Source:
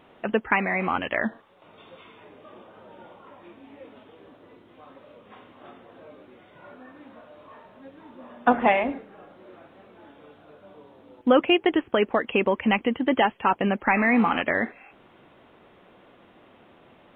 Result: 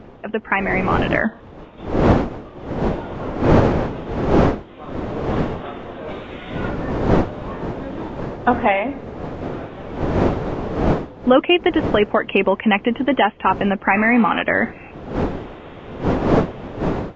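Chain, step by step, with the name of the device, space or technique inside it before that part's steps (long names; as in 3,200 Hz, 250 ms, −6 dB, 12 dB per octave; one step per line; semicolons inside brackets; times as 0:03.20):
0:06.08–0:06.69: tilt shelving filter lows −8 dB, about 840 Hz
smartphone video outdoors (wind on the microphone 470 Hz −30 dBFS; automatic gain control gain up to 16 dB; level −1 dB; AAC 64 kbit/s 16,000 Hz)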